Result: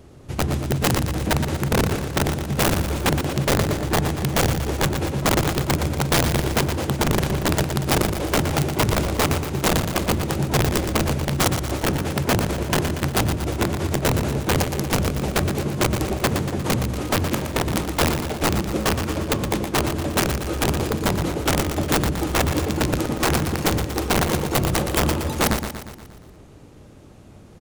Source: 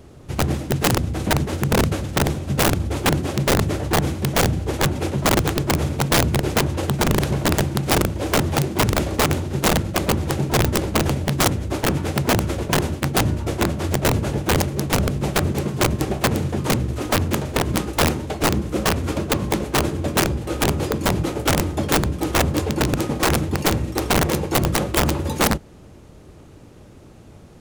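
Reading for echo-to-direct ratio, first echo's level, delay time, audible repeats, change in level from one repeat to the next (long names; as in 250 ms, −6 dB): −6.5 dB, −8.0 dB, 118 ms, 6, −5.0 dB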